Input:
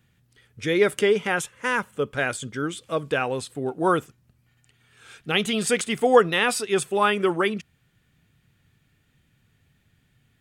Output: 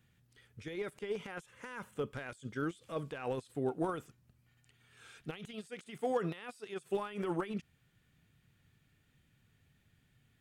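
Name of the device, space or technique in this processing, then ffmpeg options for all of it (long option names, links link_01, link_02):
de-esser from a sidechain: -filter_complex "[0:a]asplit=2[link_01][link_02];[link_02]highpass=5400,apad=whole_len=458897[link_03];[link_01][link_03]sidechaincompress=threshold=-53dB:ratio=12:attack=0.8:release=29,asettb=1/sr,asplit=3[link_04][link_05][link_06];[link_04]atrim=end=5.534[link_07];[link_05]atrim=start=5.53:end=6.9,asetpts=PTS-STARTPTS,afade=type=in:duration=0.004:curve=qsin,afade=type=out:start_time=1.366:duration=0.004:curve=qsin,highpass=100[link_08];[link_06]atrim=start=6.896[link_09];[link_07][link_08]acrossfade=duration=0.004:curve1=hsin:curve2=qsin[link_10];[link_10][link_09]acrossfade=duration=0.004:curve1=qsin:curve2=hsin,volume=-6dB"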